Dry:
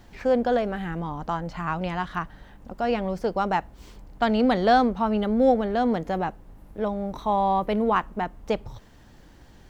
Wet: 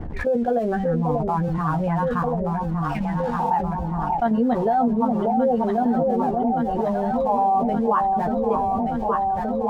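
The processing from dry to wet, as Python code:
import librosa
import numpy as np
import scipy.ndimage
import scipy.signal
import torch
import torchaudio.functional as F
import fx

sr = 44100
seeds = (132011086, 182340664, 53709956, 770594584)

y = fx.spec_expand(x, sr, power=1.8)
y = fx.env_lowpass(y, sr, base_hz=1300.0, full_db=-17.0)
y = fx.spec_repair(y, sr, seeds[0], start_s=2.67, length_s=0.84, low_hz=210.0, high_hz=1500.0, source='both')
y = fx.level_steps(y, sr, step_db=11)
y = np.sign(y) * np.maximum(np.abs(y) - 10.0 ** (-58.0 / 20.0), 0.0)
y = fx.doubler(y, sr, ms=13.0, db=-5.5)
y = fx.echo_alternate(y, sr, ms=587, hz=860.0, feedback_pct=76, wet_db=-5.5)
y = fx.env_flatten(y, sr, amount_pct=70)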